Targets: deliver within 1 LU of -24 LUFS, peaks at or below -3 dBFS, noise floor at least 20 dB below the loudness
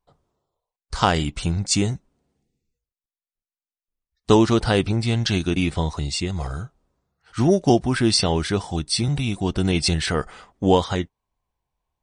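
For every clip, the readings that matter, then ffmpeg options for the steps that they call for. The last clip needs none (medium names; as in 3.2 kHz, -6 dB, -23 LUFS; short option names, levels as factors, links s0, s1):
loudness -21.5 LUFS; peak level -1.5 dBFS; loudness target -24.0 LUFS
-> -af "volume=0.75"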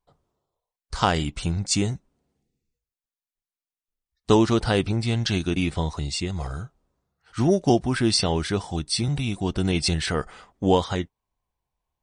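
loudness -24.0 LUFS; peak level -4.0 dBFS; noise floor -94 dBFS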